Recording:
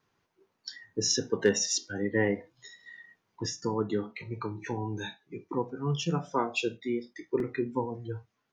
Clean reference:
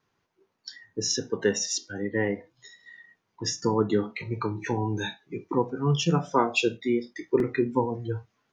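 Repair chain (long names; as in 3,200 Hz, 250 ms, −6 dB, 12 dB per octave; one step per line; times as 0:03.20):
clipped peaks rebuilt −12.5 dBFS
level correction +6 dB, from 0:03.46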